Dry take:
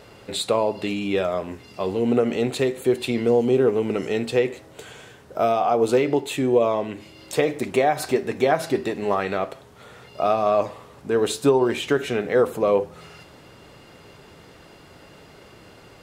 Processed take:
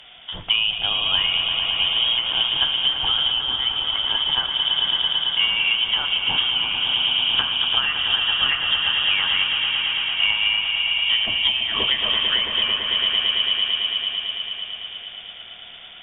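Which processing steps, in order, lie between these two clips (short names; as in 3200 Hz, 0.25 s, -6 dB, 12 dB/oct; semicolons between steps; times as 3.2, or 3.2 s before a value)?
swelling echo 0.111 s, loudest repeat 5, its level -9 dB; inverted band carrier 3500 Hz; treble ducked by the level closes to 2000 Hz, closed at -13.5 dBFS; gain +1.5 dB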